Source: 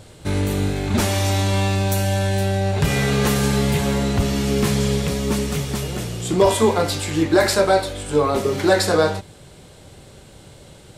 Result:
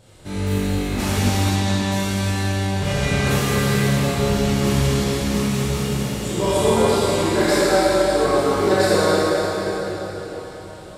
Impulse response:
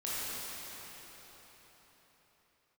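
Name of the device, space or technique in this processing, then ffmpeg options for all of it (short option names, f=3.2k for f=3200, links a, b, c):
cathedral: -filter_complex "[1:a]atrim=start_sample=2205[a];[0:a][a]afir=irnorm=-1:irlink=0,asettb=1/sr,asplit=3[b][c][d];[b]atrim=end=1.564[e];[c]atrim=start=1.56:end=3.31,asetpts=PTS-STARTPTS,afade=t=in:d=0.004:c=qsin,afade=t=out:st=1.746:d=0.004:c=qsin,lowpass=10k[f];[d]atrim=start=3.306[g];[e][f]acrossfade=d=0.004:c1=hsin:c2=qsin[h];[h][g]acrossfade=d=0.004:c1=qsin:c2=hsin,volume=-5dB"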